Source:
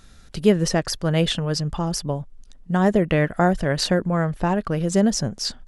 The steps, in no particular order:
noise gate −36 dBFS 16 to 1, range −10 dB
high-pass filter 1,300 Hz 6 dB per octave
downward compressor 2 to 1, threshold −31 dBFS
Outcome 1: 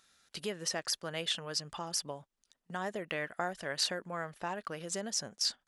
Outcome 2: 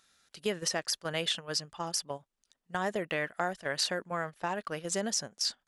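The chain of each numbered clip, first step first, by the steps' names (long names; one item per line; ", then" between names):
downward compressor, then noise gate, then high-pass filter
high-pass filter, then downward compressor, then noise gate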